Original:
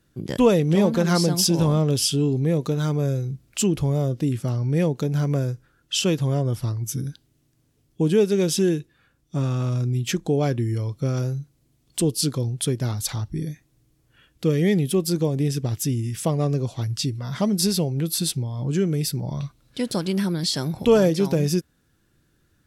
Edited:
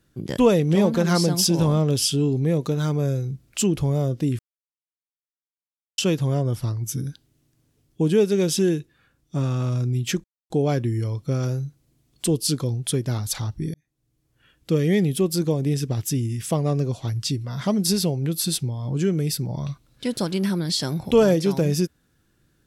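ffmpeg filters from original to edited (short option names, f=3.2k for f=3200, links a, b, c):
-filter_complex "[0:a]asplit=5[a][b][c][d][e];[a]atrim=end=4.39,asetpts=PTS-STARTPTS,afade=t=out:st=4.386:d=0.004:c=hsin[f];[b]atrim=start=4.39:end=5.98,asetpts=PTS-STARTPTS,volume=0[g];[c]atrim=start=5.98:end=10.24,asetpts=PTS-STARTPTS,afade=t=in:d=0.004:c=hsin,afade=t=out:st=4.256:d=0.004:c=hsin,apad=pad_dur=0.26[h];[d]atrim=start=10.24:end=13.48,asetpts=PTS-STARTPTS,afade=t=in:d=0.004:c=hsin,afade=t=out:st=3.236:d=0.004:c=hsin[i];[e]atrim=start=13.48,asetpts=PTS-STARTPTS,afade=t=in:d=0.98[j];[f][g][h][i][j]concat=n=5:v=0:a=1"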